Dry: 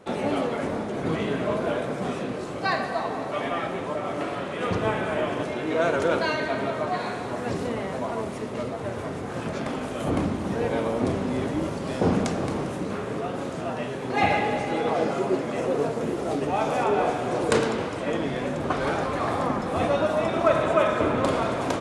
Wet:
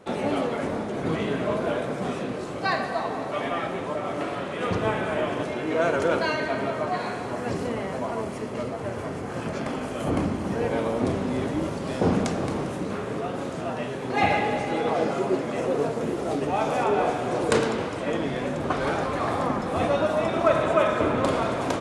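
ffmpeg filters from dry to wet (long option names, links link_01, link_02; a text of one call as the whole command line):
ffmpeg -i in.wav -filter_complex "[0:a]asettb=1/sr,asplit=3[link_01][link_02][link_03];[link_01]atrim=end=5.554[link_04];[link_02]atrim=start=5.55:end=10.79,asetpts=PTS-STARTPTS,afade=type=in:duration=0.004:curve=qsin,afade=type=out:start_time=5.236:duration=0.004:curve=qsin,bandreject=frequency=3700:width=12[link_05];[link_03]atrim=start=10.786[link_06];[link_04][link_05]acrossfade=duration=0.004:curve1=hsin:curve2=qsin[link_07];[link_07][link_06]acrossfade=duration=0.004:curve1=qsin:curve2=hsin" out.wav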